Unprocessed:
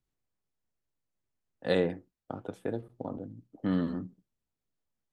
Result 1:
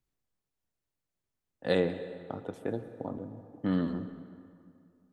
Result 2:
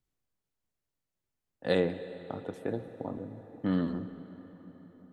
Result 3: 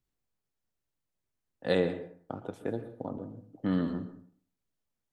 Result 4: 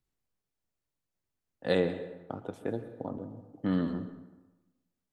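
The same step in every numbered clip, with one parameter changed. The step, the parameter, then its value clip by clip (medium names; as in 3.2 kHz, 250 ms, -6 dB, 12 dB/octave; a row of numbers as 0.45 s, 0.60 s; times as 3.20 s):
plate-style reverb, RT60: 2.4 s, 5.2 s, 0.5 s, 1.1 s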